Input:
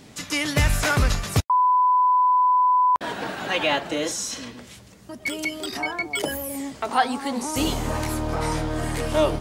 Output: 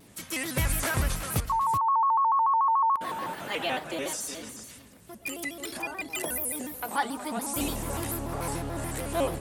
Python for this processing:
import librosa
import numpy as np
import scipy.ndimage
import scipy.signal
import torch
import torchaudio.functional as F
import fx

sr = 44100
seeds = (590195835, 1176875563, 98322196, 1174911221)

y = fx.high_shelf_res(x, sr, hz=7900.0, db=8.5, q=1.5)
y = y + 10.0 ** (-10.0 / 20.0) * np.pad(y, (int(372 * sr / 1000.0), 0))[:len(y)]
y = fx.vibrato_shape(y, sr, shape='square', rate_hz=6.9, depth_cents=160.0)
y = y * 10.0 ** (-7.5 / 20.0)